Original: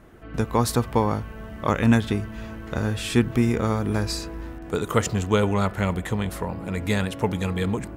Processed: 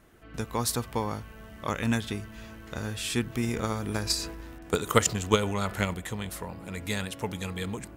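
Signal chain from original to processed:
high-shelf EQ 2,300 Hz +10.5 dB
0:03.43–0:05.94: transient designer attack +10 dB, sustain +6 dB
level −9.5 dB

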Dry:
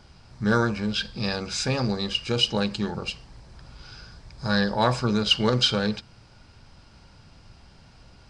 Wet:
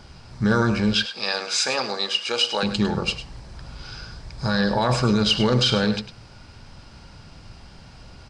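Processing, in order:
0:00.95–0:02.63: high-pass filter 600 Hz 12 dB per octave
brickwall limiter −17 dBFS, peak gain reduction 9 dB
single-tap delay 103 ms −12 dB
level +6.5 dB

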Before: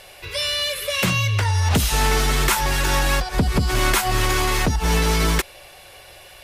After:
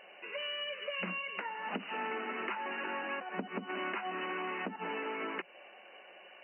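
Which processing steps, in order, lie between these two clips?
brick-wall band-pass 180–3,000 Hz
downward compressor 3 to 1, threshold −28 dBFS, peak gain reduction 9 dB
level −8.5 dB

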